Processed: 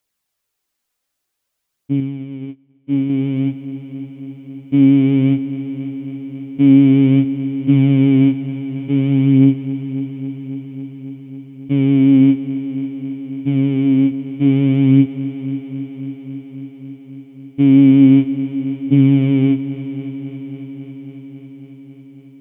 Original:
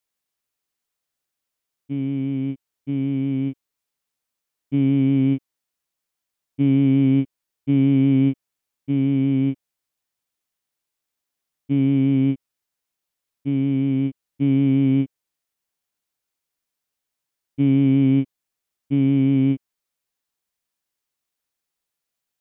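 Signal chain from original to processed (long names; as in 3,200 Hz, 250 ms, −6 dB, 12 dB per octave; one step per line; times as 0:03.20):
phase shifter 0.53 Hz, delay 4.2 ms, feedback 35%
echo machine with several playback heads 274 ms, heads first and second, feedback 72%, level −17 dB
0:02.00–0:03.10: expander for the loud parts 2.5 to 1, over −37 dBFS
level +6 dB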